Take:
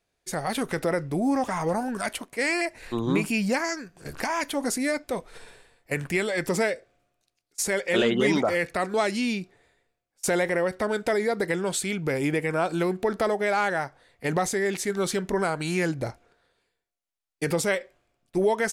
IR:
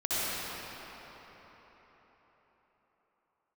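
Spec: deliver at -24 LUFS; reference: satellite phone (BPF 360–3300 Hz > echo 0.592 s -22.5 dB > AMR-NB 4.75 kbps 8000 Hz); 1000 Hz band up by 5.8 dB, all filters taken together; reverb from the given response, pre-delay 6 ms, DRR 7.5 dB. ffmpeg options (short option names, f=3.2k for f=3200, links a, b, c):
-filter_complex "[0:a]equalizer=f=1k:t=o:g=8,asplit=2[a][b];[1:a]atrim=start_sample=2205,adelay=6[c];[b][c]afir=irnorm=-1:irlink=0,volume=-18.5dB[d];[a][d]amix=inputs=2:normalize=0,highpass=360,lowpass=3.3k,aecho=1:1:592:0.075,volume=3dB" -ar 8000 -c:a libopencore_amrnb -b:a 4750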